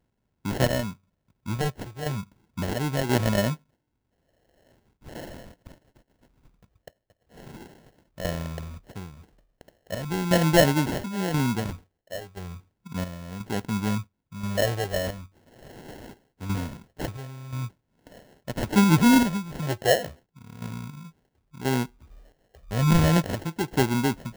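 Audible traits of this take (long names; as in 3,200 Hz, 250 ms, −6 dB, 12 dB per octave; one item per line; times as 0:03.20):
chopped level 0.97 Hz, depth 60%, duty 65%
phaser sweep stages 4, 0.39 Hz, lowest notch 230–3,500 Hz
aliases and images of a low sample rate 1,200 Hz, jitter 0%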